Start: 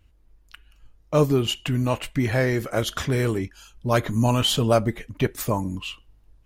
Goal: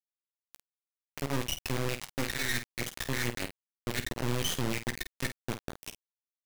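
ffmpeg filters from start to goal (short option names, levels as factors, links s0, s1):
-filter_complex "[0:a]aemphasis=mode=reproduction:type=75fm,afftfilt=real='re*(1-between(b*sr/4096,290,1700))':imag='im*(1-between(b*sr/4096,290,1700))':win_size=4096:overlap=0.75,acrossover=split=380 2600:gain=0.178 1 0.0708[s0][s1][s2];[s0][s1][s2]amix=inputs=3:normalize=0,aecho=1:1:2.7:0.79,areverse,acompressor=threshold=0.0224:ratio=16,areverse,acrusher=bits=3:dc=4:mix=0:aa=0.000001,asplit=2[s3][s4];[s4]aecho=0:1:14|50:0.224|0.316[s5];[s3][s5]amix=inputs=2:normalize=0,volume=2.11"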